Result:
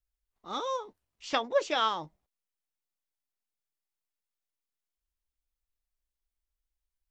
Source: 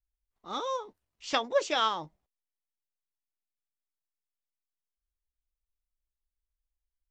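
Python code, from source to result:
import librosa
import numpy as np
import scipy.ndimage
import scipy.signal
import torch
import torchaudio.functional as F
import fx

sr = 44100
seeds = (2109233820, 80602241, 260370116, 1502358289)

y = fx.high_shelf(x, sr, hz=fx.line((1.27, 5100.0), (1.87, 6800.0)), db=-8.0, at=(1.27, 1.87), fade=0.02)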